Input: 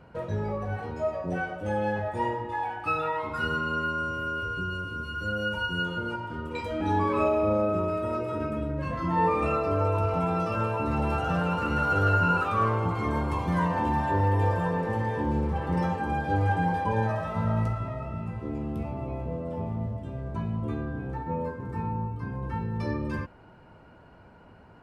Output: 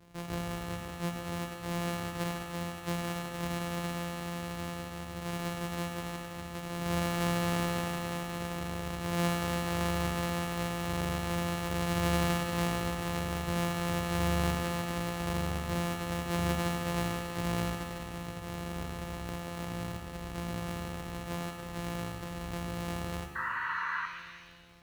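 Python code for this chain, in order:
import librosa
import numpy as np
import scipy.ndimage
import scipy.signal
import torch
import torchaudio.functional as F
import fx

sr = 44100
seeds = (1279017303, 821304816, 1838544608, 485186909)

y = np.r_[np.sort(x[:len(x) // 256 * 256].reshape(-1, 256), axis=1).ravel(), x[len(x) // 256 * 256:]]
y = fx.spec_paint(y, sr, seeds[0], shape='noise', start_s=23.35, length_s=0.71, low_hz=900.0, high_hz=2000.0, level_db=-28.0)
y = fx.rev_shimmer(y, sr, seeds[1], rt60_s=1.3, semitones=7, shimmer_db=-8, drr_db=5.0)
y = F.gain(torch.from_numpy(y), -7.5).numpy()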